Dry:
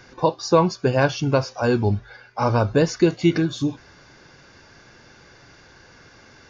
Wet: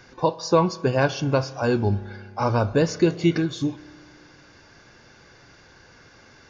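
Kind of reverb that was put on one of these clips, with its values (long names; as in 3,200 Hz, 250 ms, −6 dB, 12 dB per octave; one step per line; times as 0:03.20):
spring reverb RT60 2.1 s, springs 30 ms, chirp 50 ms, DRR 17 dB
level −2 dB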